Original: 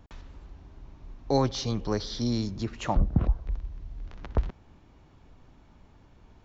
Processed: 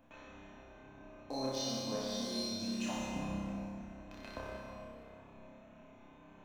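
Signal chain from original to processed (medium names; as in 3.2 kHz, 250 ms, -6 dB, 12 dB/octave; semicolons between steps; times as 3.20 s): local Wiener filter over 9 samples; tilt EQ +3.5 dB/octave; compression 2:1, threshold -48 dBFS, peak gain reduction 14 dB; feedback comb 520 Hz, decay 0.46 s, mix 90%; in parallel at -5 dB: bit crusher 7-bit; on the sum: small resonant body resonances 250/630/2500 Hz, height 14 dB, ringing for 35 ms; on a send: flutter echo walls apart 5.2 m, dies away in 1.1 s; on the sum: plate-style reverb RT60 3.2 s, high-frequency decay 0.6×, DRR -2 dB; trim +9 dB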